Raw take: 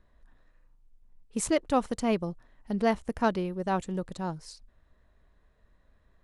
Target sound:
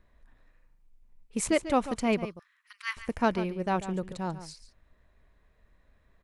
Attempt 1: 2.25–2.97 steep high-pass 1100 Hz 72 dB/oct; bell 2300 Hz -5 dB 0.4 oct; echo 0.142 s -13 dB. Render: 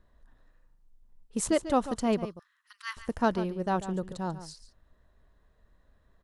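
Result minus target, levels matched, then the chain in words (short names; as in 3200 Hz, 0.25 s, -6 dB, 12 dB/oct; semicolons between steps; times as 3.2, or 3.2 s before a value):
2000 Hz band -4.0 dB
2.25–2.97 steep high-pass 1100 Hz 72 dB/oct; bell 2300 Hz +6.5 dB 0.4 oct; echo 0.142 s -13 dB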